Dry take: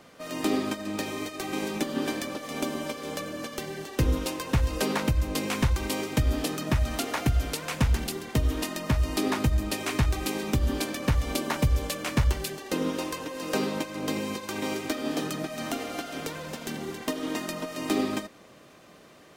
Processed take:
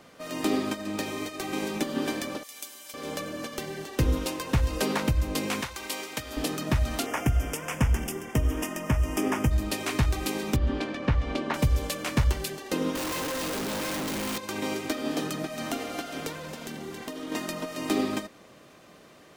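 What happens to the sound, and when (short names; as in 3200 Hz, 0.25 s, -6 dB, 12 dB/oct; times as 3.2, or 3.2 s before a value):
2.43–2.94 differentiator
5.61–6.37 HPF 980 Hz 6 dB/oct
7.06–9.51 Butterworth band-stop 4100 Hz, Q 1.9
10.56–11.54 LPF 3100 Hz
12.95–14.38 infinite clipping
16.32–17.32 compressor 3:1, threshold -34 dBFS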